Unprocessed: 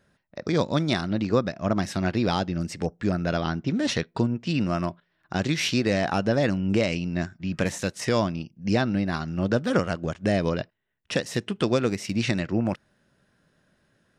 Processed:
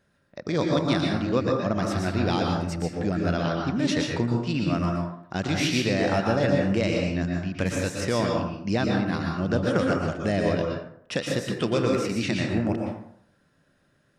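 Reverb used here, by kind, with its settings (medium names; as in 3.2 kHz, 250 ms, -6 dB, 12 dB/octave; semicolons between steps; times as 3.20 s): plate-style reverb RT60 0.67 s, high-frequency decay 0.55×, pre-delay 105 ms, DRR 0 dB; trim -2.5 dB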